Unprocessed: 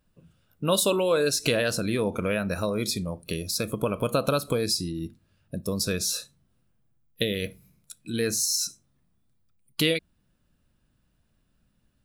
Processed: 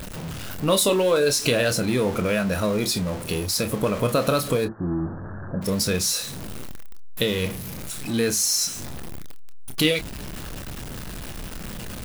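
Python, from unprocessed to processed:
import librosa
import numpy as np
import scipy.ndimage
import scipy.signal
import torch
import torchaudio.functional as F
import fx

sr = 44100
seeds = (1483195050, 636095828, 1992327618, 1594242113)

y = x + 0.5 * 10.0 ** (-30.0 / 20.0) * np.sign(x)
y = fx.steep_lowpass(y, sr, hz=1700.0, slope=96, at=(4.64, 5.61), fade=0.02)
y = fx.chorus_voices(y, sr, voices=4, hz=0.42, base_ms=28, depth_ms=5.0, mix_pct=25)
y = F.gain(torch.from_numpy(y), 4.0).numpy()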